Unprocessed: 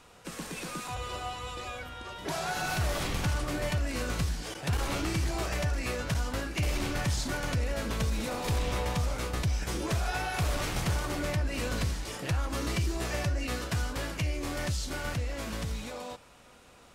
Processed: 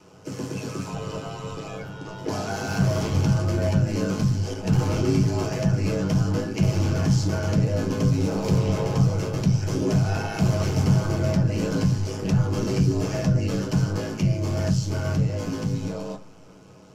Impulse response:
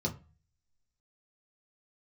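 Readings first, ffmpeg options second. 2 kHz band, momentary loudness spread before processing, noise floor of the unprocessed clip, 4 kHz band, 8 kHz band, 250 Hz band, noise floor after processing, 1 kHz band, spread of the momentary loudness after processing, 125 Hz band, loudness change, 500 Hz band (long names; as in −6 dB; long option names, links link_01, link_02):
−1.5 dB, 7 LU, −55 dBFS, 0.0 dB, +1.0 dB, +12.5 dB, −47 dBFS, +1.5 dB, 10 LU, +11.5 dB, +8.5 dB, +8.5 dB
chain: -filter_complex "[0:a]aeval=exprs='0.0794*(cos(1*acos(clip(val(0)/0.0794,-1,1)))-cos(1*PI/2))+0.00126*(cos(6*acos(clip(val(0)/0.0794,-1,1)))-cos(6*PI/2))':channel_layout=same,aeval=exprs='val(0)*sin(2*PI*52*n/s)':channel_layout=same[link_01];[1:a]atrim=start_sample=2205,asetrate=52920,aresample=44100[link_02];[link_01][link_02]afir=irnorm=-1:irlink=0,volume=1.5dB"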